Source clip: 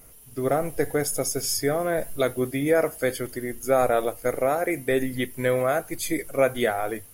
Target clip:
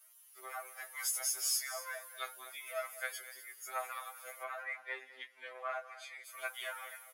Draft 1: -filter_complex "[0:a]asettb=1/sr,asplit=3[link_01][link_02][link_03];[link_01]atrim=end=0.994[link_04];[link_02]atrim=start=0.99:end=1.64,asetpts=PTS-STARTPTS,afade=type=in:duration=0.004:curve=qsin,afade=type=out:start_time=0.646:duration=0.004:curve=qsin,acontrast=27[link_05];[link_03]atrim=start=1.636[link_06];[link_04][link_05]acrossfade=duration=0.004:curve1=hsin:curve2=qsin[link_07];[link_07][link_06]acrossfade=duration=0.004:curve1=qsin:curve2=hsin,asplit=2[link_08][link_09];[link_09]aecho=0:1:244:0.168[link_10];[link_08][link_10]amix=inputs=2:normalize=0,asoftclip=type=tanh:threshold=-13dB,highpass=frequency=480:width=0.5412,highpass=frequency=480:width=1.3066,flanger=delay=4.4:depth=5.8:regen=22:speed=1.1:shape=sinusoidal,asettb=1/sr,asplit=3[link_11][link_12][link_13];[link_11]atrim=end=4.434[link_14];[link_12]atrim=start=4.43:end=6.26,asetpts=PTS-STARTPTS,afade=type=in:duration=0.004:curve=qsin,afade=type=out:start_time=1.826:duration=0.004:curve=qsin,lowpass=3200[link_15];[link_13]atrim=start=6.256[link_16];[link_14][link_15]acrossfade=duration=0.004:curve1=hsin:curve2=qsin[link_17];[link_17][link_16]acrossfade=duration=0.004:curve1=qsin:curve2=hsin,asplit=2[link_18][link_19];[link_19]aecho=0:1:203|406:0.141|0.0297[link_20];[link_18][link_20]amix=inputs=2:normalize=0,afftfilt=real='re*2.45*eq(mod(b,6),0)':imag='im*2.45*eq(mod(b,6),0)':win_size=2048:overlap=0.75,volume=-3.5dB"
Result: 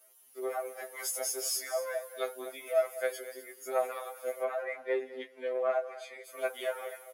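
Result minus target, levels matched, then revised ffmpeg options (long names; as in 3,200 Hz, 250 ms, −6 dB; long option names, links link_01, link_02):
500 Hz band +10.5 dB
-filter_complex "[0:a]asettb=1/sr,asplit=3[link_01][link_02][link_03];[link_01]atrim=end=0.994[link_04];[link_02]atrim=start=0.99:end=1.64,asetpts=PTS-STARTPTS,afade=type=in:duration=0.004:curve=qsin,afade=type=out:start_time=0.646:duration=0.004:curve=qsin,acontrast=27[link_05];[link_03]atrim=start=1.636[link_06];[link_04][link_05]acrossfade=duration=0.004:curve1=hsin:curve2=qsin[link_07];[link_07][link_06]acrossfade=duration=0.004:curve1=qsin:curve2=hsin,asplit=2[link_08][link_09];[link_09]aecho=0:1:244:0.168[link_10];[link_08][link_10]amix=inputs=2:normalize=0,asoftclip=type=tanh:threshold=-13dB,highpass=frequency=970:width=0.5412,highpass=frequency=970:width=1.3066,flanger=delay=4.4:depth=5.8:regen=22:speed=1.1:shape=sinusoidal,asettb=1/sr,asplit=3[link_11][link_12][link_13];[link_11]atrim=end=4.434[link_14];[link_12]atrim=start=4.43:end=6.26,asetpts=PTS-STARTPTS,afade=type=in:duration=0.004:curve=qsin,afade=type=out:start_time=1.826:duration=0.004:curve=qsin,lowpass=3200[link_15];[link_13]atrim=start=6.256[link_16];[link_14][link_15]acrossfade=duration=0.004:curve1=hsin:curve2=qsin[link_17];[link_17][link_16]acrossfade=duration=0.004:curve1=qsin:curve2=hsin,asplit=2[link_18][link_19];[link_19]aecho=0:1:203|406:0.141|0.0297[link_20];[link_18][link_20]amix=inputs=2:normalize=0,afftfilt=real='re*2.45*eq(mod(b,6),0)':imag='im*2.45*eq(mod(b,6),0)':win_size=2048:overlap=0.75,volume=-3.5dB"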